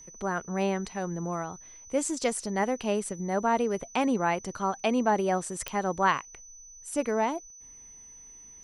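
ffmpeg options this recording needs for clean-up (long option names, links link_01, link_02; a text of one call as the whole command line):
ffmpeg -i in.wav -af "adeclick=threshold=4,bandreject=frequency=6000:width=30" out.wav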